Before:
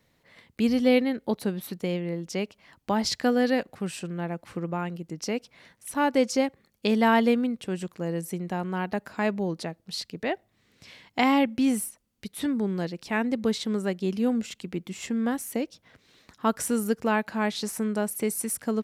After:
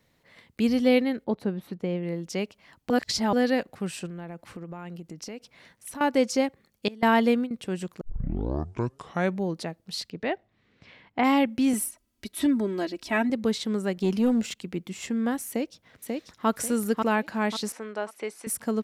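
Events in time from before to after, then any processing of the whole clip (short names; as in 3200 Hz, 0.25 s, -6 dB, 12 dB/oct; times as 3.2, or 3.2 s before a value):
1.24–2.03 LPF 1400 Hz 6 dB/oct
2.9–3.33 reverse
4.06–6.01 compressor, threshold -35 dBFS
6.88–7.51 gate with hold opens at -14 dBFS, closes at -22 dBFS
8.01 tape start 1.42 s
10.09–11.23 LPF 5000 Hz -> 2000 Hz
11.73–13.3 comb 3.1 ms, depth 88%
13.97–14.57 sample leveller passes 1
15.48–16.48 echo throw 0.54 s, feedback 35%, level -3 dB
17.72–18.47 BPF 490–3800 Hz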